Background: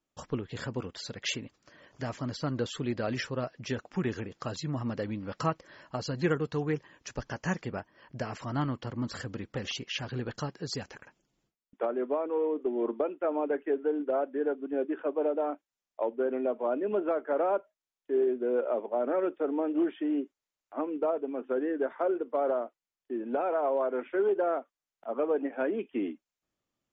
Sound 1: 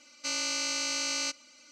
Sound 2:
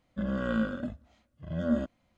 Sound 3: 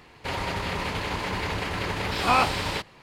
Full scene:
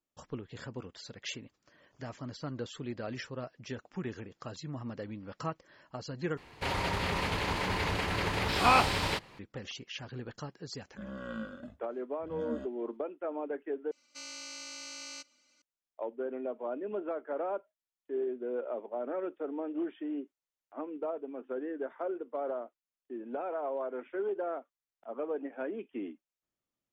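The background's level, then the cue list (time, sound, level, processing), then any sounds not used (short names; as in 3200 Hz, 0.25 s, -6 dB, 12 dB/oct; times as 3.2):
background -7 dB
6.37 replace with 3 -2.5 dB
10.8 add 2 -8.5 dB + low shelf 210 Hz -7 dB
13.91 replace with 1 -13 dB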